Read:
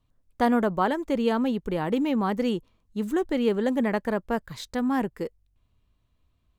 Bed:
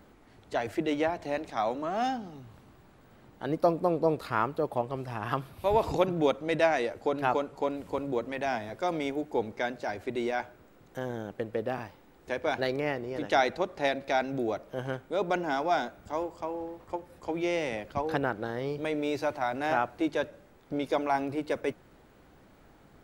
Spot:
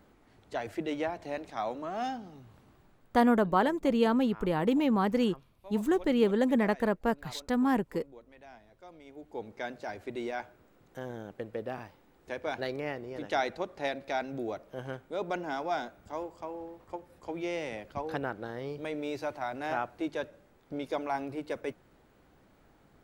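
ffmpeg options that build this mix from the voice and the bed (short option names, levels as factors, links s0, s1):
-filter_complex "[0:a]adelay=2750,volume=0.841[s0];[1:a]volume=3.98,afade=t=out:st=2.73:d=0.61:silence=0.141254,afade=t=in:st=9.05:d=0.68:silence=0.149624[s1];[s0][s1]amix=inputs=2:normalize=0"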